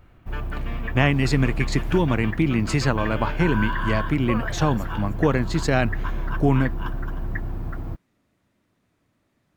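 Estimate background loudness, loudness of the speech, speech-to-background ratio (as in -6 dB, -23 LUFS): -30.5 LUFS, -23.5 LUFS, 7.0 dB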